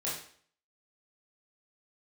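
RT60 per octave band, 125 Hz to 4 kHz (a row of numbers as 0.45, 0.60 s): 0.50, 0.55, 0.55, 0.55, 0.50, 0.50 s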